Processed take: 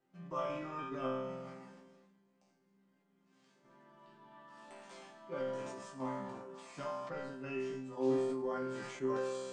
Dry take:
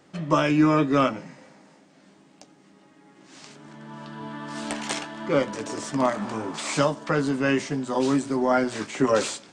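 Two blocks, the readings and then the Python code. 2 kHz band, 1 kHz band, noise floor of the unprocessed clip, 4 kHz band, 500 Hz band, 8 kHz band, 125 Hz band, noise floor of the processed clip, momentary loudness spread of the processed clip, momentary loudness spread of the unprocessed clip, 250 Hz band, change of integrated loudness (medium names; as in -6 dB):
-19.0 dB, -16.0 dB, -56 dBFS, -21.0 dB, -12.5 dB, -22.0 dB, -19.0 dB, -74 dBFS, 19 LU, 16 LU, -18.0 dB, -15.0 dB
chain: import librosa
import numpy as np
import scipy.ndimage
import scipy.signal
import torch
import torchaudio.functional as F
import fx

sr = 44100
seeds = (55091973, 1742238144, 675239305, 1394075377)

p1 = fx.high_shelf(x, sr, hz=2300.0, db=-8.0)
p2 = fx.level_steps(p1, sr, step_db=23)
p3 = p1 + (p2 * 10.0 ** (3.0 / 20.0))
p4 = fx.resonator_bank(p3, sr, root=48, chord='sus4', decay_s=0.78)
p5 = fx.sustainer(p4, sr, db_per_s=32.0)
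y = p5 * 10.0 ** (-3.0 / 20.0)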